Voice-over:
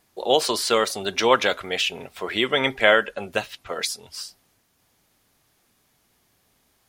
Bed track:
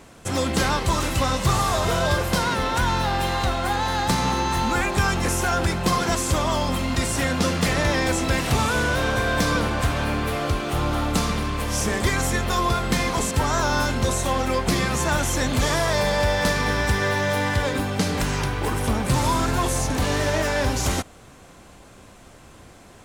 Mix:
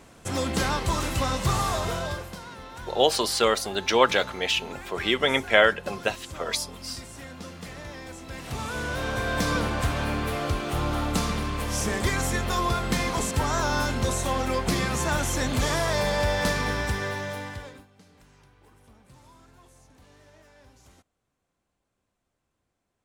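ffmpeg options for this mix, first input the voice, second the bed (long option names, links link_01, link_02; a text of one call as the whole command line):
ffmpeg -i stem1.wav -i stem2.wav -filter_complex "[0:a]adelay=2700,volume=-1.5dB[link_01];[1:a]volume=11dB,afade=type=out:start_time=1.67:duration=0.69:silence=0.188365,afade=type=in:start_time=8.26:duration=1.29:silence=0.177828,afade=type=out:start_time=16.53:duration=1.34:silence=0.0354813[link_02];[link_01][link_02]amix=inputs=2:normalize=0" out.wav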